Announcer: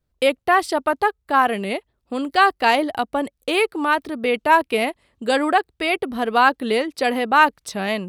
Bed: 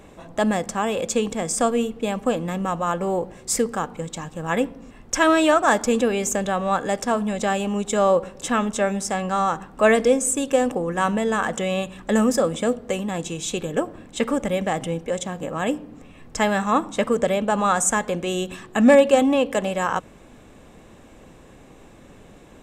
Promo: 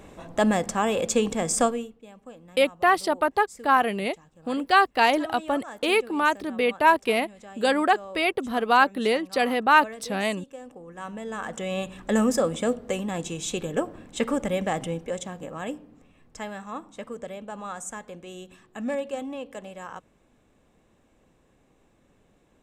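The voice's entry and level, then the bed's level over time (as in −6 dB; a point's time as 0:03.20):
2.35 s, −3.0 dB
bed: 0:01.63 −0.5 dB
0:02.01 −22.5 dB
0:10.59 −22.5 dB
0:11.89 −3 dB
0:14.79 −3 dB
0:16.62 −16 dB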